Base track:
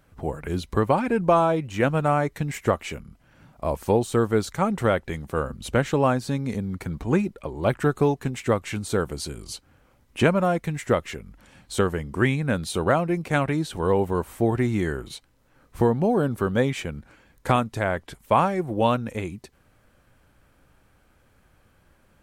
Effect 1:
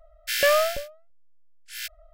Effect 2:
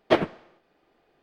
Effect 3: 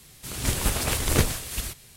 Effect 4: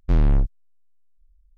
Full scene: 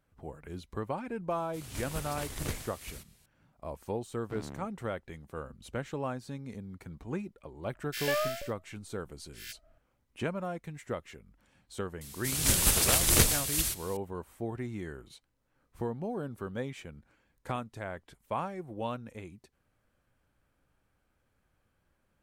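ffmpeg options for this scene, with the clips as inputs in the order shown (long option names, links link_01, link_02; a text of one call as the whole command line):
ffmpeg -i bed.wav -i cue0.wav -i cue1.wav -i cue2.wav -i cue3.wav -filter_complex "[3:a]asplit=2[link_01][link_02];[0:a]volume=-14.5dB[link_03];[4:a]highpass=180[link_04];[link_02]highshelf=frequency=3000:gain=9.5[link_05];[link_01]atrim=end=1.96,asetpts=PTS-STARTPTS,volume=-14.5dB,afade=type=in:duration=0.004:curve=hsin,afade=type=out:start_time=1.956:duration=0.004:curve=hsin,adelay=1300[link_06];[link_04]atrim=end=1.57,asetpts=PTS-STARTPTS,volume=-14.5dB,afade=type=in:duration=0.004:curve=hsin,afade=type=out:start_time=1.566:duration=0.004:curve=hsin,adelay=185661S[link_07];[1:a]atrim=end=2.13,asetpts=PTS-STARTPTS,volume=-10.5dB,afade=type=in:duration=0.004:curve=hsin,afade=type=out:start_time=2.126:duration=0.004:curve=hsin,adelay=7650[link_08];[link_05]atrim=end=1.96,asetpts=PTS-STARTPTS,volume=-4.5dB,afade=type=in:duration=0.004:curve=hsin,afade=type=out:start_time=1.956:duration=0.004:curve=hsin,adelay=12010[link_09];[link_03][link_06][link_07][link_08][link_09]amix=inputs=5:normalize=0" out.wav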